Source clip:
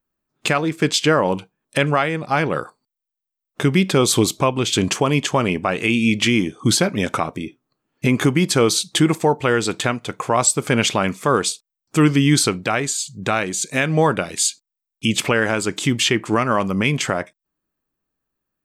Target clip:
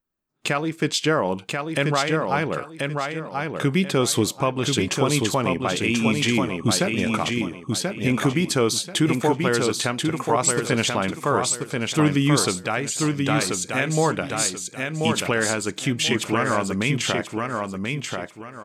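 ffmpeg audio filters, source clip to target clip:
ffmpeg -i in.wav -af "aecho=1:1:1035|2070|3105|4140:0.631|0.17|0.046|0.0124,volume=-4.5dB" out.wav

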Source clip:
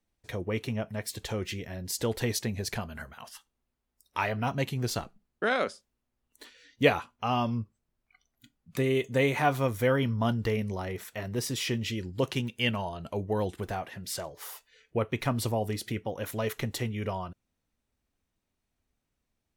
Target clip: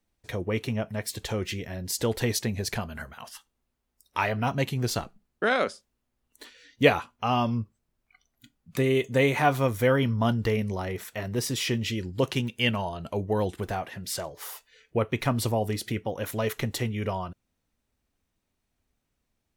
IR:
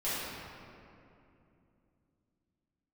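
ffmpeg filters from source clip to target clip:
-af "volume=3dB"

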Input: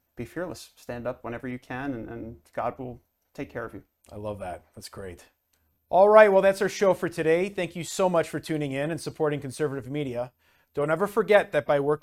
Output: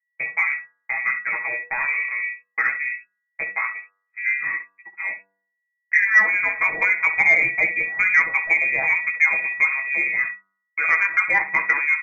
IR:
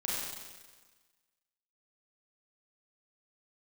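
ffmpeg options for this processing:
-af "aeval=exprs='val(0)+0.00794*sin(2*PI*660*n/s)':channel_layout=same,agate=range=-49dB:threshold=-37dB:ratio=16:detection=peak,lowpass=frequency=2200:width_type=q:width=0.5098,lowpass=frequency=2200:width_type=q:width=0.6013,lowpass=frequency=2200:width_type=q:width=0.9,lowpass=frequency=2200:width_type=q:width=2.563,afreqshift=-2600,acompressor=threshold=-22dB:ratio=8,aecho=1:1:6.2:0.69,aecho=1:1:15|66:0.531|0.282,acontrast=53,bandreject=frequency=97.18:width_type=h:width=4,bandreject=frequency=194.36:width_type=h:width=4,bandreject=frequency=291.54:width_type=h:width=4,bandreject=frequency=388.72:width_type=h:width=4,bandreject=frequency=485.9:width_type=h:width=4,bandreject=frequency=583.08:width_type=h:width=4,bandreject=frequency=680.26:width_type=h:width=4,bandreject=frequency=777.44:width_type=h:width=4,bandreject=frequency=874.62:width_type=h:width=4,bandreject=frequency=971.8:width_type=h:width=4,bandreject=frequency=1068.98:width_type=h:width=4,bandreject=frequency=1166.16:width_type=h:width=4,bandreject=frequency=1263.34:width_type=h:width=4,bandreject=frequency=1360.52:width_type=h:width=4,bandreject=frequency=1457.7:width_type=h:width=4,bandreject=frequency=1554.88:width_type=h:width=4,bandreject=frequency=1652.06:width_type=h:width=4"

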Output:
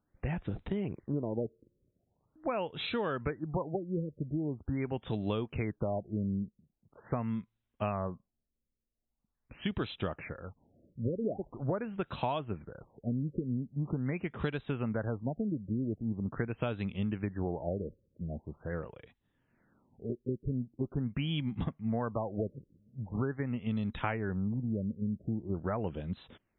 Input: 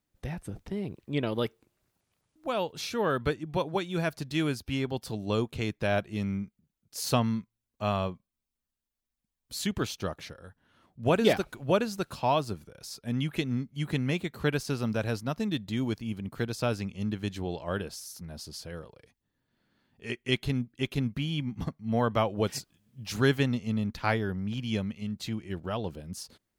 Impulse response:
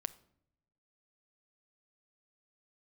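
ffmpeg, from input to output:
-af "acompressor=threshold=-33dB:ratio=12,afftfilt=real='re*lt(b*sr/1024,570*pow(4100/570,0.5+0.5*sin(2*PI*0.43*pts/sr)))':imag='im*lt(b*sr/1024,570*pow(4100/570,0.5+0.5*sin(2*PI*0.43*pts/sr)))':win_size=1024:overlap=0.75,volume=4dB"

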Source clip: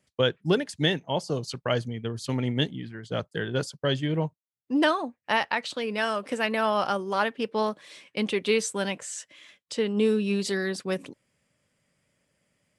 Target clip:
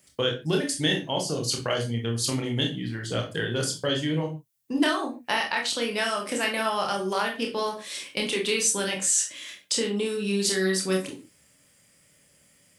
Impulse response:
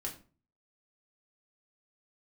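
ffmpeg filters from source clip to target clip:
-filter_complex "[0:a]acompressor=threshold=-37dB:ratio=2,crystalizer=i=3:c=0,asplit=2[link_01][link_02];[1:a]atrim=start_sample=2205,atrim=end_sample=6174,adelay=26[link_03];[link_02][link_03]afir=irnorm=-1:irlink=0,volume=-1dB[link_04];[link_01][link_04]amix=inputs=2:normalize=0,volume=4dB"

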